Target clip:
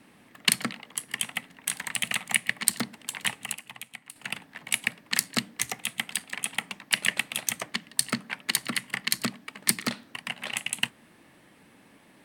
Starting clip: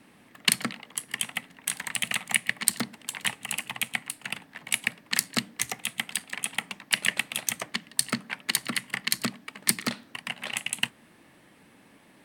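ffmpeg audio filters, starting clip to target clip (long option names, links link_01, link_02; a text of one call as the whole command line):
ffmpeg -i in.wav -filter_complex "[0:a]asettb=1/sr,asplit=3[link_01][link_02][link_03];[link_01]atrim=end=3.524[link_04];[link_02]atrim=start=3.52:end=4.16,asetpts=PTS-STARTPTS,afade=type=in:duration=0.004:curve=qsin,afade=type=out:start_time=0.636:duration=0.004:curve=qsin,acompressor=threshold=-39dB:ratio=5[link_05];[link_03]atrim=start=4.156[link_06];[link_04][link_05]acrossfade=duration=0.004:curve1=hsin:curve2=qsin[link_07];[link_07][link_06]acrossfade=duration=0.004:curve1=qsin:curve2=hsin" out.wav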